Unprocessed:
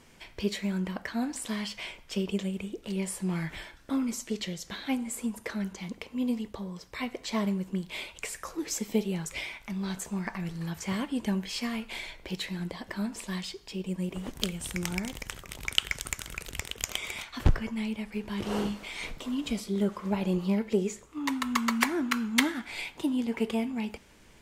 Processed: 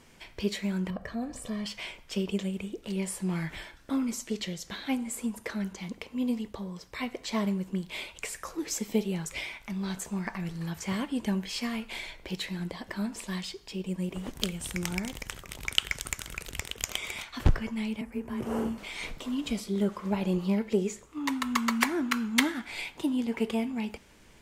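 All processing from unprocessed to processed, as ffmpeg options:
-filter_complex "[0:a]asettb=1/sr,asplit=3[s0][s1][s2];[s0]atrim=end=0.904[s3];[s1]atrim=start=0.9:end=1.66,asetpts=PTS-STARTPTS,afade=t=in:d=0.004:c=qsin,afade=t=out:st=0.756:d=0.004:c=qsin,tiltshelf=f=780:g=7.5,aecho=1:1:1.7:0.6,atrim=end_sample=33516,acompressor=threshold=0.0126:ratio=1.5:attack=3.2:release=140:knee=1:detection=peak[s4];[s2]atrim=start=1.656[s5];[s3][s4]acrossfade=d=0.004:c1=hsin:c2=qsin[s6];[s6][s5]acrossfade=d=0.004:c1=qsin:c2=hsin,asettb=1/sr,asplit=3[s7][s8][s9];[s7]atrim=end=18.014[s10];[s8]atrim=start=18.01:end=18.78,asetpts=PTS-STARTPTS,afade=t=in:d=0.004:c=qsin,afade=t=out:st=0.766:d=0.004:c=qsin,equalizer=f=3900:t=o:w=1.3:g=-15,afreqshift=21[s11];[s9]atrim=start=18.776[s12];[s10][s11]acrossfade=d=0.004:c1=hsin:c2=qsin[s13];[s13][s12]acrossfade=d=0.004:c1=qsin:c2=hsin"

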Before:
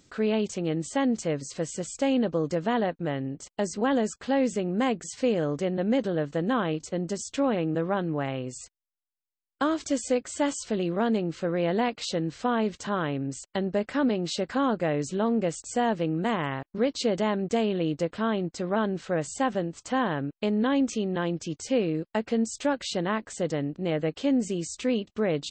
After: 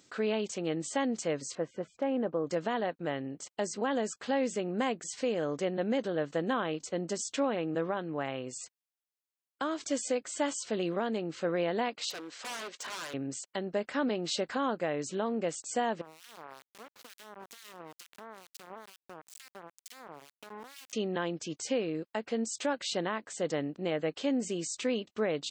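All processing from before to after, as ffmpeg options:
-filter_complex "[0:a]asettb=1/sr,asplit=3[s0][s1][s2];[s0]atrim=end=1.554[s3];[s1]atrim=start=1.55:end=2.47,asetpts=PTS-STARTPTS,afade=t=in:d=0.004:c=qsin,afade=t=out:st=0.916:d=0.004:c=qsin,lowpass=1500,lowshelf=f=65:g=-11,asoftclip=type=hard:threshold=0.15[s4];[s2]atrim=start=2.466[s5];[s3][s4]acrossfade=d=0.004:c1=hsin:c2=qsin[s6];[s6][s5]acrossfade=d=0.004:c1=qsin:c2=hsin,asettb=1/sr,asplit=3[s7][s8][s9];[s7]atrim=end=12.104[s10];[s8]atrim=start=12.1:end=13.14,asetpts=PTS-STARTPTS,afade=t=in:d=0.004:c=qsin,afade=t=out:st=1.036:d=0.004:c=qsin,highpass=500,aeval=exprs='0.0211*(abs(mod(val(0)/0.0211+3,4)-2)-1)':c=same[s11];[s9]atrim=start=13.136[s12];[s10][s11]acrossfade=d=0.004:c1=hsin:c2=qsin[s13];[s13][s12]acrossfade=d=0.004:c1=qsin:c2=hsin,asettb=1/sr,asplit=3[s14][s15][s16];[s14]atrim=end=16.014[s17];[s15]atrim=start=16.01:end=20.93,asetpts=PTS-STARTPTS,afade=t=in:d=0.004:c=qsin,afade=t=out:st=4.916:d=0.004:c=qsin,acompressor=threshold=0.0158:ratio=8:attack=3.2:release=140:knee=1:detection=peak,aeval=exprs='val(0)*gte(abs(val(0)),0.0188)':c=same,acrossover=split=1900[s18][s19];[s18]aeval=exprs='val(0)*(1-1/2+1/2*cos(2*PI*2.2*n/s))':c=same[s20];[s19]aeval=exprs='val(0)*(1-1/2-1/2*cos(2*PI*2.2*n/s))':c=same[s21];[s20][s21]amix=inputs=2:normalize=0[s22];[s16]atrim=start=20.926[s23];[s17][s22]acrossfade=d=0.004:c1=hsin:c2=qsin[s24];[s24][s23]acrossfade=d=0.004:c1=qsin:c2=hsin,highpass=f=380:p=1,alimiter=limit=0.0944:level=0:latency=1:release=457"

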